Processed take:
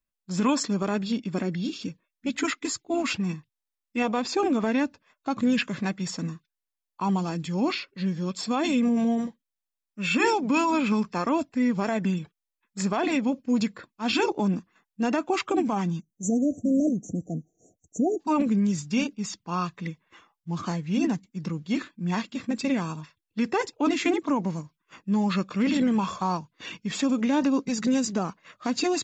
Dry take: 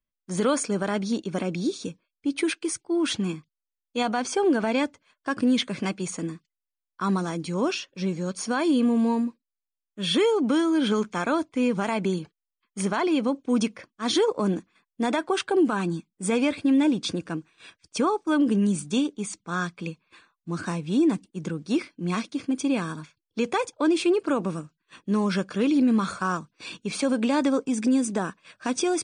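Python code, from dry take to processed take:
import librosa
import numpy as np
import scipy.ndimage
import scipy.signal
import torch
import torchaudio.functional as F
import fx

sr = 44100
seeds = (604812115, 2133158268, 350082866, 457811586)

y = fx.formant_shift(x, sr, semitones=-4)
y = fx.spec_erase(y, sr, start_s=16.0, length_s=2.2, low_hz=760.0, high_hz=5700.0)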